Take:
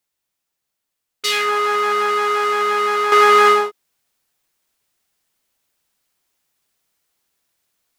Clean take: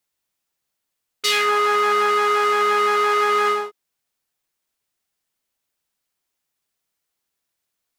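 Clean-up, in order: trim 0 dB, from 3.12 s -7.5 dB

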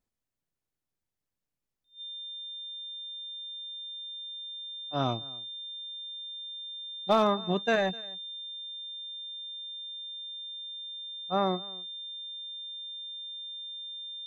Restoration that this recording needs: clip repair -14.5 dBFS; band-stop 3.6 kHz, Q 30; inverse comb 254 ms -22.5 dB

